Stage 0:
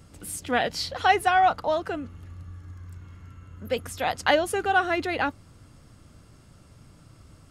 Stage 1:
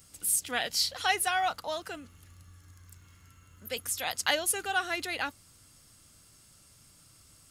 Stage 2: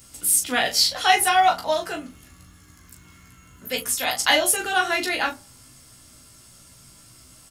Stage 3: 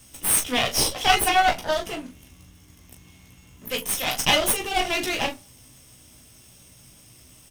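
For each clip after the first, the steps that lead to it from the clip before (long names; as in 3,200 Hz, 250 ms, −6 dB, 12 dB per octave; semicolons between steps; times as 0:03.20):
first-order pre-emphasis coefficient 0.9; level +7 dB
ambience of single reflections 16 ms −3.5 dB, 39 ms −7.5 dB; on a send at −7 dB: convolution reverb RT60 0.45 s, pre-delay 3 ms; on the sum: level +6.5 dB
lower of the sound and its delayed copy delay 0.34 ms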